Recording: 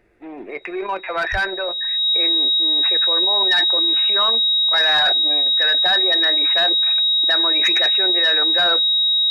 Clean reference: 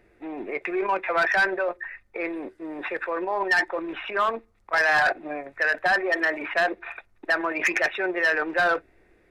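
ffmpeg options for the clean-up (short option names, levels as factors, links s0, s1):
-filter_complex "[0:a]bandreject=f=3800:w=30,asplit=3[s0][s1][s2];[s0]afade=t=out:st=1.31:d=0.02[s3];[s1]highpass=f=140:w=0.5412,highpass=f=140:w=1.3066,afade=t=in:st=1.31:d=0.02,afade=t=out:st=1.43:d=0.02[s4];[s2]afade=t=in:st=1.43:d=0.02[s5];[s3][s4][s5]amix=inputs=3:normalize=0"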